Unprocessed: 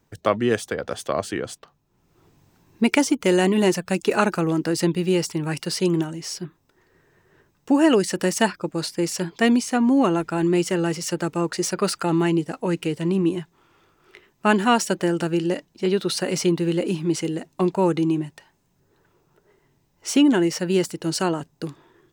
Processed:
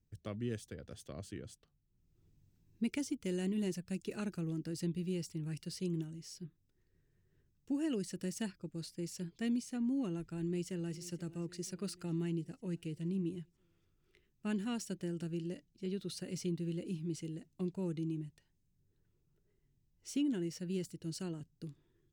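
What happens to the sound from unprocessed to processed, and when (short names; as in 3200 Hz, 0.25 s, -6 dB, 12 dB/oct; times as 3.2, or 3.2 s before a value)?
10.3–10.98 echo throw 0.48 s, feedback 60%, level -17 dB
whole clip: passive tone stack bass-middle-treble 10-0-1; gain +2 dB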